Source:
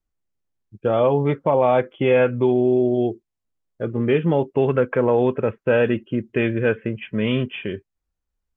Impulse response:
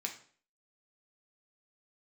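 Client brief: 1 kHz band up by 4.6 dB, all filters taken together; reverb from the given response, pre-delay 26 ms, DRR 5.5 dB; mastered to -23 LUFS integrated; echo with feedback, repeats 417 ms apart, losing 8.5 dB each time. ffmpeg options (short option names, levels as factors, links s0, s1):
-filter_complex "[0:a]equalizer=f=1000:t=o:g=6,aecho=1:1:417|834|1251|1668:0.376|0.143|0.0543|0.0206,asplit=2[s0][s1];[1:a]atrim=start_sample=2205,adelay=26[s2];[s1][s2]afir=irnorm=-1:irlink=0,volume=0.501[s3];[s0][s3]amix=inputs=2:normalize=0,volume=0.596"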